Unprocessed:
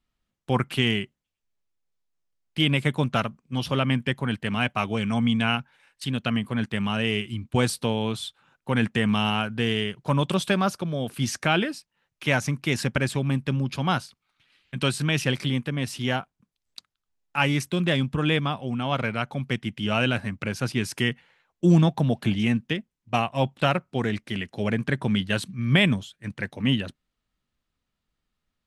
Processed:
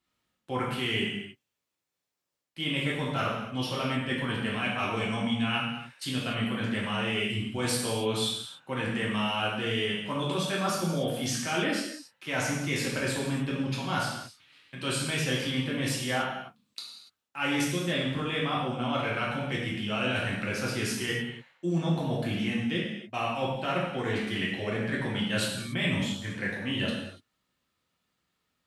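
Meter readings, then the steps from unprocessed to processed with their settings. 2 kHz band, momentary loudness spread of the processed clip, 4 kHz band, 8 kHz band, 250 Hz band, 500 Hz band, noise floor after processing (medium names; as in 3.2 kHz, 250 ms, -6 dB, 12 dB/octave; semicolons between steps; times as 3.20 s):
-3.0 dB, 6 LU, -2.5 dB, +1.5 dB, -5.5 dB, -3.5 dB, -83 dBFS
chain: high-pass 87 Hz; bass shelf 240 Hz -5 dB; reverse; compression 6:1, threshold -31 dBFS, peak gain reduction 15.5 dB; reverse; gated-style reverb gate 320 ms falling, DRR -5 dB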